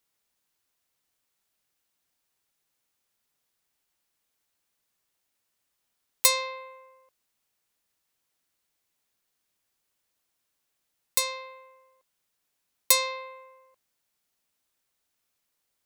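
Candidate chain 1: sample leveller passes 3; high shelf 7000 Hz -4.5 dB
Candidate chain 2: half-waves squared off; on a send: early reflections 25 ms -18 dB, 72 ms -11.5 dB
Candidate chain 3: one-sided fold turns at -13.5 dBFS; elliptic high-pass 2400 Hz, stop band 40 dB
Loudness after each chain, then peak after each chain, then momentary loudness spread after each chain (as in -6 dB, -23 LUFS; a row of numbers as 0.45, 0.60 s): -19.5, -22.0, -27.0 LUFS; -6.5, -5.0, -7.0 dBFS; 17, 18, 16 LU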